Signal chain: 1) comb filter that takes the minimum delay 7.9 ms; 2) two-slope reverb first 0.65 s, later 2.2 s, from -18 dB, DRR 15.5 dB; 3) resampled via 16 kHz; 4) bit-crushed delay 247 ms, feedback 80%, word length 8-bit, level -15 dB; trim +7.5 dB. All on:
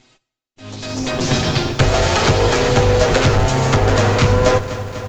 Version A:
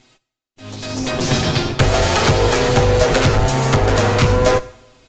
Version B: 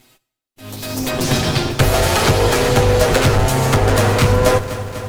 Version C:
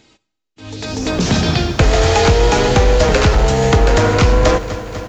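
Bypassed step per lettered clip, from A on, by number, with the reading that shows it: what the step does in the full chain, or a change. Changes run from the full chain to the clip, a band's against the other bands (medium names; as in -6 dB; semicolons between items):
4, momentary loudness spread change -2 LU; 3, 8 kHz band +2.5 dB; 1, crest factor change -2.5 dB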